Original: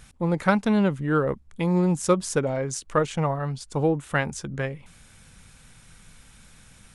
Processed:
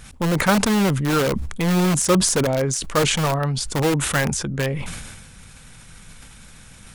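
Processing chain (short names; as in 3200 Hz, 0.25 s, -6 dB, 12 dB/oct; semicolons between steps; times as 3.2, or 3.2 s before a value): in parallel at -3 dB: wrapped overs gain 20 dB; on the sum: sustainer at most 37 dB/s; gain +1.5 dB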